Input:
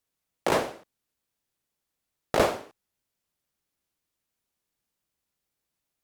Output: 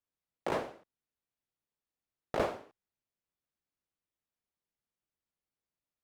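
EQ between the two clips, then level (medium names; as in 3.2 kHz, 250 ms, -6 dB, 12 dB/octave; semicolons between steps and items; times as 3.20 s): treble shelf 4.3 kHz -11 dB; -8.5 dB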